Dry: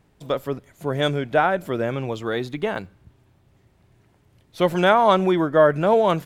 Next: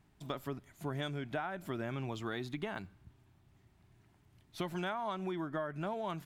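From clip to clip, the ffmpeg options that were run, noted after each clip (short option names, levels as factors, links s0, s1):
-af "equalizer=f=500:w=4.3:g=-14.5,acompressor=threshold=0.0447:ratio=12,volume=0.447"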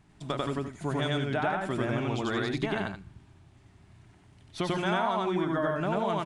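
-af "aecho=1:1:93.29|172:1|0.355,aresample=22050,aresample=44100,volume=2.11"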